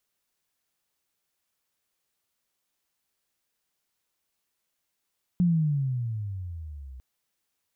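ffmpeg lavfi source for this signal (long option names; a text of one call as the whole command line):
ffmpeg -f lavfi -i "aevalsrc='pow(10,(-18-22*t/1.6)/20)*sin(2*PI*181*1.6/(-18.5*log(2)/12)*(exp(-18.5*log(2)/12*t/1.6)-1))':duration=1.6:sample_rate=44100" out.wav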